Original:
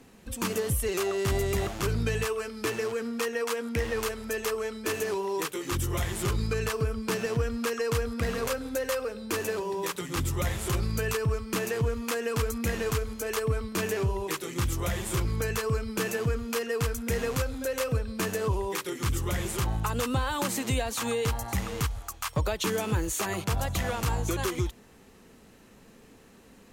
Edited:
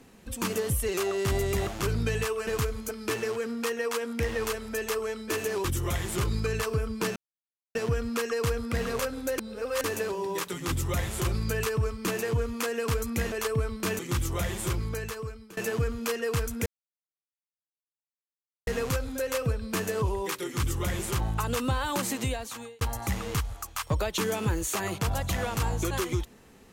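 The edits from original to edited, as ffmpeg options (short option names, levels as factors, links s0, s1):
-filter_complex "[0:a]asplit=12[s0][s1][s2][s3][s4][s5][s6][s7][s8][s9][s10][s11];[s0]atrim=end=2.472[s12];[s1]atrim=start=12.798:end=13.242[s13];[s2]atrim=start=2.468:end=5.202[s14];[s3]atrim=start=5.708:end=7.23,asetpts=PTS-STARTPTS,afade=t=out:st=1.518:d=0.004:c=hsin,apad=pad_dur=0.59[s15];[s4]atrim=start=7.23:end=8.862,asetpts=PTS-STARTPTS,afade=t=in:d=0.004:c=hsin[s16];[s5]atrim=start=8.858:end=9.322,asetpts=PTS-STARTPTS,areverse[s17];[s6]atrim=start=9.318:end=12.802[s18];[s7]atrim=start=13.238:end=13.912[s19];[s8]atrim=start=14.458:end=16.04,asetpts=PTS-STARTPTS,afade=t=out:st=0.592:d=0.99:silence=0.0707946[s20];[s9]atrim=start=16.04:end=17.13,asetpts=PTS-STARTPTS,afade=t=in:d=0.004:c=hsin:silence=0.0707946,afade=t=out:st=1.086:d=0.004:c=hsin,apad=pad_dur=2.01[s21];[s10]atrim=start=17.13:end=21.27,asetpts=PTS-STARTPTS,afade=t=in:d=0.004:c=hsin,afade=t=out:st=3.45:d=0.69[s22];[s11]atrim=start=21.27,asetpts=PTS-STARTPTS,afade=t=in:d=0.004:c=hsin[s23];[s12][s13]acrossfade=d=0.004:c1=hsin:c2=hsin[s24];[s24][s14]acrossfade=d=0.004:c1=hsin:c2=hsin[s25];[s15][s16]concat=n=2:v=0:a=1[s26];[s25][s26]acrossfade=d=0.004:c1=hsin:c2=hsin[s27];[s27][s17]acrossfade=d=0.004:c1=hsin:c2=hsin[s28];[s28][s18]acrossfade=d=0.004:c1=hsin:c2=hsin[s29];[s29][s19]acrossfade=d=0.004:c1=hsin:c2=hsin[s30];[s20][s21][s22][s23]concat=n=4:v=0:a=1[s31];[s30][s31]acrossfade=d=0.004:c1=hsin:c2=hsin"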